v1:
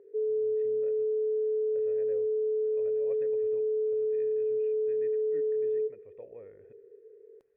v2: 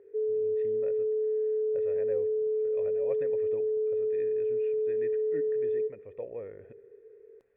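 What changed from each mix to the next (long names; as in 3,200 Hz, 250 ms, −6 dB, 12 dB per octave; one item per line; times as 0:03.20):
speech +8.5 dB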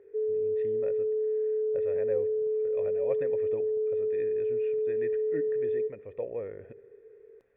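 speech +4.0 dB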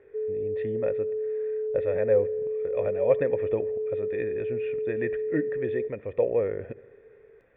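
speech +10.5 dB
background: send −8.5 dB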